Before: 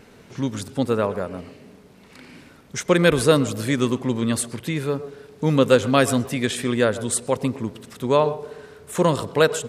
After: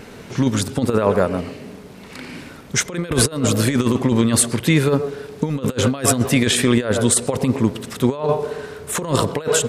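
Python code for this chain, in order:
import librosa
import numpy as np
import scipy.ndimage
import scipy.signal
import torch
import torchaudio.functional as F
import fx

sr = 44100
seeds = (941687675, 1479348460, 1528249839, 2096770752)

y = fx.over_compress(x, sr, threshold_db=-23.0, ratio=-0.5)
y = F.gain(torch.from_numpy(y), 6.5).numpy()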